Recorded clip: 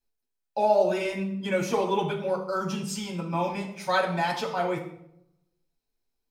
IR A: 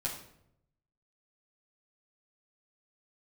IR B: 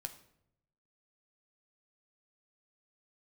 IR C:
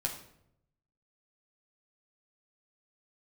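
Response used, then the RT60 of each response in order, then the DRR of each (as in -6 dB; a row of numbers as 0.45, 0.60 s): C; 0.75, 0.75, 0.75 s; -6.0, 6.0, -1.0 dB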